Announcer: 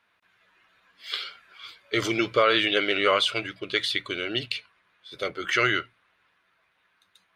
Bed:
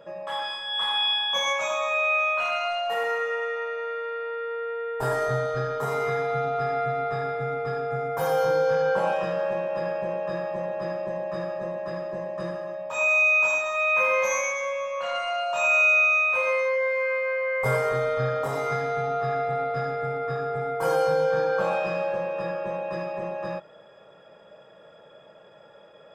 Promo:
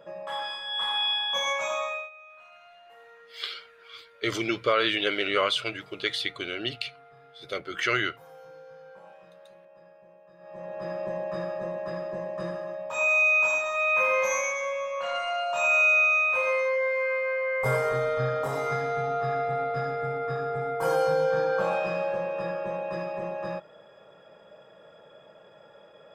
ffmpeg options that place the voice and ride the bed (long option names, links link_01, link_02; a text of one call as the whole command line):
ffmpeg -i stem1.wav -i stem2.wav -filter_complex "[0:a]adelay=2300,volume=-3dB[link_01];[1:a]volume=21.5dB,afade=type=out:start_time=1.79:duration=0.31:silence=0.0707946,afade=type=in:start_time=10.38:duration=0.67:silence=0.0630957[link_02];[link_01][link_02]amix=inputs=2:normalize=0" out.wav